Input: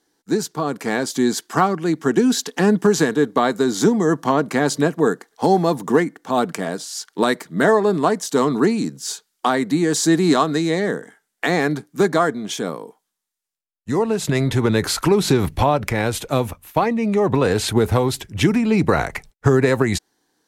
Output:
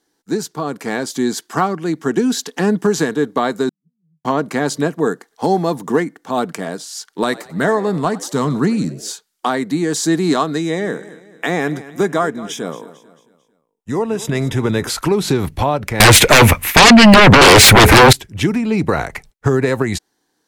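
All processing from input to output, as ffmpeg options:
-filter_complex "[0:a]asettb=1/sr,asplit=3[a][b][c];[a]atrim=end=3.694[d];[b]atrim=start=3.69:end=4.25,asetpts=PTS-STARTPTS,afade=t=in:d=0.004:c=qsin,afade=t=out:st=0.556:d=0.004:c=qsin,asuperpass=centerf=160:order=4:qfactor=6.6,aderivative[e];[c]atrim=start=4.246[f];[d][e]acrossfade=d=0.004:c1=hsin:c2=qsin[g];[g][f]acrossfade=d=0.004:c1=qsin:c2=hsin,asettb=1/sr,asplit=3[h][i][j];[h]atrim=end=7.084[k];[i]atrim=start=7.08:end=9.11,asetpts=PTS-STARTPTS,afade=t=in:d=0.004:c=qsin,afade=t=out:st=2.026:d=0.004:c=qsin,asubboost=boost=10.5:cutoff=150,asplit=5[l][m][n][o][p];[m]adelay=92,afreqshift=73,volume=-19dB[q];[n]adelay=184,afreqshift=146,volume=-24.7dB[r];[o]adelay=276,afreqshift=219,volume=-30.4dB[s];[p]adelay=368,afreqshift=292,volume=-36dB[t];[l][q][r][s][t]amix=inputs=5:normalize=0,atrim=end_sample=89523[u];[j]atrim=start=9.106[v];[k][u]acrossfade=d=0.004:c1=hsin:c2=qsin[w];[w][v]acrossfade=d=0.004:c1=qsin:c2=hsin,asettb=1/sr,asplit=3[x][y][z];[x]atrim=end=10.584[aa];[y]atrim=start=10.58:end=14.9,asetpts=PTS-STARTPTS,afade=t=in:d=0.004:c=qsin,afade=t=out:st=4.316:d=0.004:c=qsin,asuperstop=centerf=4300:order=12:qfactor=7,deesser=0.3,aecho=1:1:223|446|669|892:0.141|0.0607|0.0261|0.0112,atrim=end_sample=190512[ab];[z]atrim=start=14.896[ac];[aa][ab]acrossfade=d=0.004:c1=hsin:c2=qsin[ad];[ad][ac]acrossfade=d=0.004:c1=qsin:c2=hsin,asettb=1/sr,asplit=3[ae][af][ag];[ae]atrim=end=16.004[ah];[af]atrim=start=16:end=18.13,asetpts=PTS-STARTPTS,afade=t=in:d=0.004:c=qsin,afade=t=out:st=2.126:d=0.004:c=qsin,equalizer=f=2.1k:t=o:w=0.66:g=11.5,aeval=exprs='0.75*sin(PI/2*7.08*val(0)/0.75)':c=same[ai];[ag]atrim=start=18.126[aj];[ah][ai]acrossfade=d=0.004:c1=hsin:c2=qsin[ak];[ak][aj]acrossfade=d=0.004:c1=qsin:c2=hsin"

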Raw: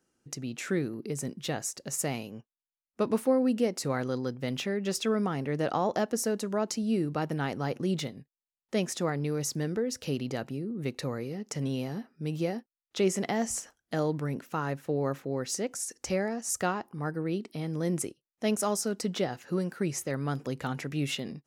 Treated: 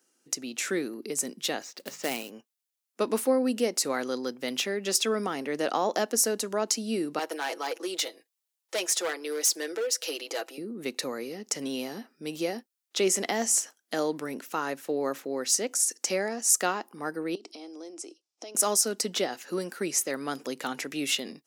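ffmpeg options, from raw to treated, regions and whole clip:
-filter_complex "[0:a]asettb=1/sr,asplit=3[a][b][c];[a]atrim=end=1.624[d];[b]atrim=start=1.62:end=2.3,asetpts=PTS-STARTPTS,afade=t=in:d=0.004:c=qsin,afade=t=out:st=0.676:d=0.004:c=qsin,lowpass=f=4k:w=0.5412,lowpass=f=4k:w=1.3066,bandreject=f=50:t=h:w=6,bandreject=f=100:t=h:w=6,bandreject=f=150:t=h:w=6,bandreject=f=200:t=h:w=6,acrusher=bits=3:mode=log:mix=0:aa=0.000001[e];[c]atrim=start=2.296[f];[d][e]acrossfade=d=0.004:c1=hsin:c2=qsin[g];[g][f]acrossfade=d=0.004:c1=qsin:c2=hsin,asettb=1/sr,asplit=3[h][i][j];[h]atrim=end=7.194[k];[i]atrim=start=7.19:end=10.58,asetpts=PTS-STARTPTS,afade=t=in:d=0.004:c=qsin,afade=t=out:st=3.386:d=0.004:c=qsin,highpass=f=380:w=0.5412,highpass=f=380:w=1.3066,aecho=1:1:6.1:0.67,atrim=end_sample=149499,asoftclip=type=hard:threshold=-27.5dB[l];[j]atrim=start=10.576[m];[k][l]acrossfade=d=0.004:c1=hsin:c2=qsin[n];[n][m]acrossfade=d=0.004:c1=qsin:c2=hsin,asettb=1/sr,asplit=3[o][p][q];[o]atrim=end=17.354[r];[p]atrim=start=17.35:end=18.55,asetpts=PTS-STARTPTS,afade=t=in:d=0.004:c=qsin,afade=t=out:st=1.196:d=0.004:c=qsin,acompressor=threshold=-40dB:ratio=16:attack=3.2:release=140:knee=1:detection=peak,highpass=f=290:w=0.5412,highpass=f=290:w=1.3066,equalizer=f=320:t=q:w=4:g=7,equalizer=f=730:t=q:w=4:g=7,equalizer=f=1.8k:t=q:w=4:g=-9,equalizer=f=5.3k:t=q:w=4:g=8,lowpass=f=8.1k:w=0.5412,lowpass=f=8.1k:w=1.3066[s];[q]atrim=start=18.546[t];[r][s]acrossfade=d=0.004:c1=hsin:c2=qsin[u];[u][t]acrossfade=d=0.004:c1=qsin:c2=hsin,highpass=f=240:w=0.5412,highpass=f=240:w=1.3066,highshelf=f=2.9k:g=10,volume=1dB"

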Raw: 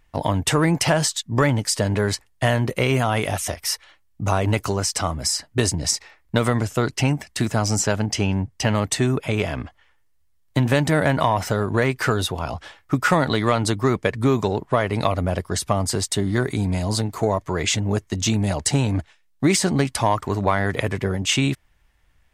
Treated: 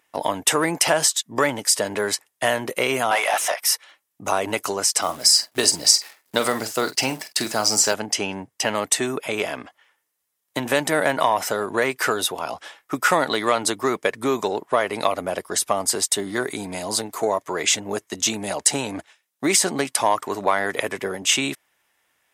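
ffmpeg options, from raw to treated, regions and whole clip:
-filter_complex "[0:a]asettb=1/sr,asplit=3[a][b][c];[a]atrim=end=3.114[d];[b]atrim=start=3.11:end=3.61,asetpts=PTS-STARTPTS,afade=t=in:d=0.004:c=qsin,afade=t=out:st=0.496:d=0.004:c=qsin,highpass=f=600:w=0.5412,highpass=f=600:w=1.3066,asplit=2[e][f];[f]highpass=f=720:p=1,volume=20dB,asoftclip=type=tanh:threshold=-9.5dB[g];[e][g]amix=inputs=2:normalize=0,lowpass=f=1.7k:p=1,volume=-6dB[h];[c]atrim=start=3.606[i];[d][h]acrossfade=d=0.004:c1=hsin:c2=qsin[j];[j][i]acrossfade=d=0.004:c1=qsin:c2=hsin,asettb=1/sr,asplit=3[k][l][m];[k]atrim=end=5.024[n];[l]atrim=start=5.02:end=7.94,asetpts=PTS-STARTPTS,afade=t=in:d=0.004:c=qsin,afade=t=out:st=2.916:d=0.004:c=qsin,equalizer=f=4.6k:w=4.3:g=11.5,acrusher=bits=8:dc=4:mix=0:aa=0.000001,asplit=2[o][p];[p]adelay=46,volume=-12dB[q];[o][q]amix=inputs=2:normalize=0,atrim=end_sample=128772[r];[m]atrim=start=7.936[s];[n][r]acrossfade=d=0.004:c1=hsin:c2=qsin[t];[t][s]acrossfade=d=0.004:c1=qsin:c2=hsin,highpass=360,equalizer=f=12k:w=0.65:g=7.5,bandreject=f=4.4k:w=19,volume=1dB"

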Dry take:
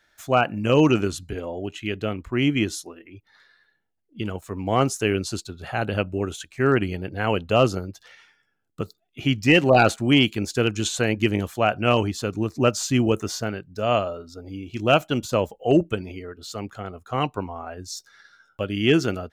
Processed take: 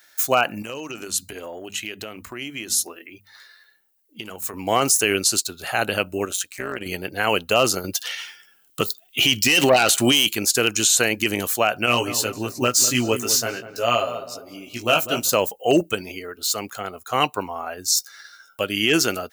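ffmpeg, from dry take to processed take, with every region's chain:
-filter_complex "[0:a]asettb=1/sr,asplit=3[a][b][c];[a]atrim=end=0.624[d];[b]atrim=start=0.62:end=4.54,asetpts=PTS-STARTPTS,afade=t=in:d=0.004:c=qsin,afade=t=out:st=3.916:d=0.004:c=qsin,bandreject=f=50:t=h:w=6,bandreject=f=100:t=h:w=6,bandreject=f=150:t=h:w=6,bandreject=f=200:t=h:w=6,bandreject=f=250:t=h:w=6,acompressor=threshold=-32dB:ratio=8:attack=3.2:release=140:knee=1:detection=peak[e];[c]atrim=start=4.536[f];[d][e]acrossfade=d=0.004:c1=hsin:c2=qsin[g];[g][f]acrossfade=d=0.004:c1=qsin:c2=hsin,asettb=1/sr,asplit=3[h][i][j];[h]atrim=end=6.254[k];[i]atrim=start=6.25:end=6.86,asetpts=PTS-STARTPTS,afade=t=in:d=0.004:c=qsin,afade=t=out:st=0.606:d=0.004:c=qsin,acompressor=threshold=-24dB:ratio=5:attack=3.2:release=140:knee=1:detection=peak,tremolo=f=190:d=0.824[l];[j]atrim=start=6.856[m];[k][l]acrossfade=d=0.004:c1=hsin:c2=qsin[n];[n][m]acrossfade=d=0.004:c1=qsin:c2=hsin,asettb=1/sr,asplit=3[o][p][q];[o]atrim=end=7.844[r];[p]atrim=start=7.84:end=10.29,asetpts=PTS-STARTPTS,afade=t=in:d=0.004:c=qsin,afade=t=out:st=2.446:d=0.004:c=qsin,equalizer=f=3.1k:t=o:w=0.42:g=9,acontrast=86[s];[q]atrim=start=10.286[t];[r][s]acrossfade=d=0.004:c1=hsin:c2=qsin[u];[u][t]acrossfade=d=0.004:c1=qsin:c2=hsin,asettb=1/sr,asplit=3[v][w][x];[v]atrim=end=11.864[y];[w]atrim=start=11.86:end=15.29,asetpts=PTS-STARTPTS,afade=t=in:d=0.004:c=qsin,afade=t=out:st=3.426:d=0.004:c=qsin,flanger=delay=16:depth=2.1:speed=1.1,aecho=1:1:7.4:0.33,atrim=end_sample=151263,asplit=2[z][aa];[aa]adelay=198,lowpass=f=1.3k:p=1,volume=-11.5dB,asplit=2[ab][ac];[ac]adelay=198,lowpass=f=1.3k:p=1,volume=0.38,asplit=2[ad][ae];[ae]adelay=198,lowpass=f=1.3k:p=1,volume=0.38,asplit=2[af][ag];[ag]adelay=198,lowpass=f=1.3k:p=1,volume=0.38[ah];[z][ab][ad][af][ah]amix=inputs=5:normalize=0,atrim=end_sample=151263[ai];[x]atrim=start=15.286[aj];[y][ai]acrossfade=d=0.004:c1=hsin:c2=qsin[ak];[ak][aj]acrossfade=d=0.004:c1=qsin:c2=hsin,aemphasis=mode=production:type=riaa,bandreject=f=3.4k:w=16,alimiter=level_in=11dB:limit=-1dB:release=50:level=0:latency=1,volume=-5.5dB"

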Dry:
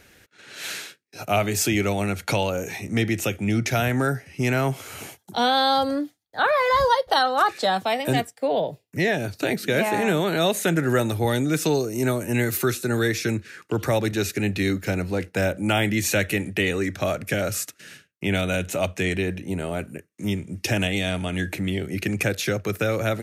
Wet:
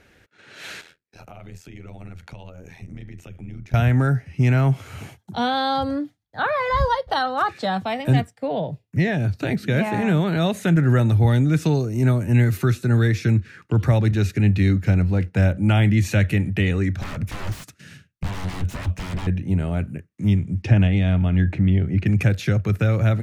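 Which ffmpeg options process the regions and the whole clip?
-filter_complex "[0:a]asettb=1/sr,asplit=3[a][b][c];[a]atrim=end=0.814[d];[b]atrim=start=0.81:end=3.74,asetpts=PTS-STARTPTS,afade=t=in:d=0.004:c=qsin,afade=t=out:st=2.926:d=0.004:c=qsin,acompressor=threshold=-36dB:ratio=6:attack=3.2:release=140:knee=1:detection=peak,tremolo=f=83:d=0.857[e];[c]atrim=start=3.736[f];[d][e]acrossfade=d=0.004:c1=hsin:c2=qsin[g];[g][f]acrossfade=d=0.004:c1=qsin:c2=hsin,asettb=1/sr,asplit=3[h][i][j];[h]atrim=end=16.984[k];[i]atrim=start=16.98:end=19.27,asetpts=PTS-STARTPTS,afade=t=in:d=0.004:c=qsin,afade=t=out:st=2.286:d=0.004:c=qsin,bass=f=250:g=3,treble=f=4k:g=5,aeval=exprs='0.0447*(abs(mod(val(0)/0.0447+3,4)-2)-1)':c=same[l];[j]atrim=start=19.266[m];[k][l]acrossfade=d=0.004:c1=hsin:c2=qsin[n];[n][m]acrossfade=d=0.004:c1=qsin:c2=hsin,asettb=1/sr,asplit=3[o][p][q];[o]atrim=end=20.624[r];[p]atrim=start=20.62:end=22.06,asetpts=PTS-STARTPTS,afade=t=in:d=0.004:c=qsin,afade=t=out:st=1.436:d=0.004:c=qsin,lowpass=f=11k:w=0.5412,lowpass=f=11k:w=1.3066,aemphasis=mode=reproduction:type=75fm[s];[q]atrim=start=22.056[t];[r][s]acrossfade=d=0.004:c1=hsin:c2=qsin[u];[u][t]acrossfade=d=0.004:c1=qsin:c2=hsin,lowpass=f=2.4k:p=1,asubboost=boost=5:cutoff=170"

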